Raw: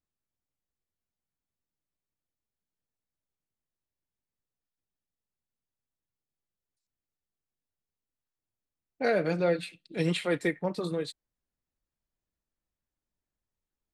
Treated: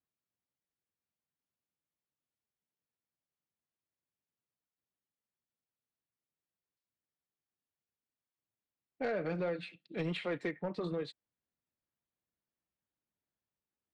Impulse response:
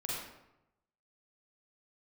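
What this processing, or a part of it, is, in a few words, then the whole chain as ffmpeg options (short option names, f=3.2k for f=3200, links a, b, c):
AM radio: -af "highpass=100,lowpass=3.3k,acompressor=threshold=-27dB:ratio=6,asoftclip=type=tanh:threshold=-24.5dB,volume=-2.5dB"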